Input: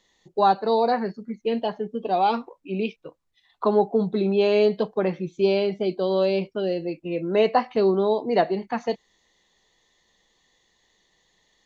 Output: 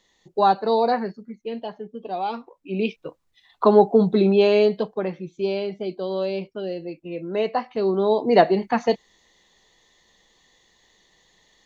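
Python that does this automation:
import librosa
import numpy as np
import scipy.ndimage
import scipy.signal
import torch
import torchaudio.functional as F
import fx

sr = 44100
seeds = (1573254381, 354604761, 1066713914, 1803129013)

y = fx.gain(x, sr, db=fx.line((0.94, 1.0), (1.39, -6.0), (2.4, -6.0), (2.97, 5.5), (4.22, 5.5), (5.16, -4.0), (7.75, -4.0), (8.29, 5.5)))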